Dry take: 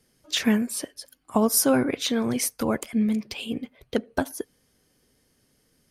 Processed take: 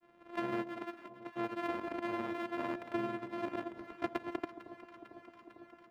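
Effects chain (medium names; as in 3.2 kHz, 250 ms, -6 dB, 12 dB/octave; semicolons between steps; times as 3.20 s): sorted samples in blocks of 128 samples; three-band isolator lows -18 dB, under 180 Hz, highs -24 dB, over 2.7 kHz; compression 5:1, threshold -39 dBFS, peak gain reduction 21 dB; granulator, pitch spread up and down by 0 st; echo whose repeats swap between lows and highs 225 ms, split 950 Hz, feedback 85%, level -13 dB; trim +5 dB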